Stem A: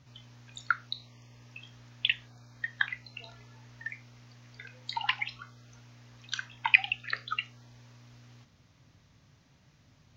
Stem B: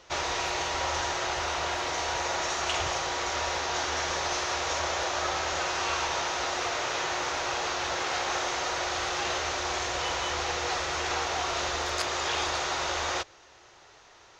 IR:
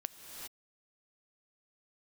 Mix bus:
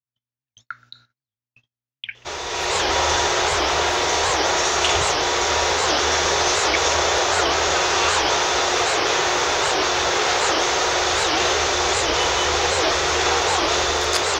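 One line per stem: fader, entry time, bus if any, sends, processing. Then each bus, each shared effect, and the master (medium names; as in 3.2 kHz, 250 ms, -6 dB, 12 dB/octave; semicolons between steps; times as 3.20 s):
-7.5 dB, 0.00 s, send -13.5 dB, echo send -22.5 dB, none
-1.5 dB, 2.15 s, no send, no echo send, level rider gain up to 11 dB; small resonant body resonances 420/3500 Hz, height 9 dB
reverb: on, pre-delay 3 ms
echo: feedback delay 125 ms, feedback 52%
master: gate -51 dBFS, range -37 dB; treble shelf 6.4 kHz +5 dB; warped record 78 rpm, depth 250 cents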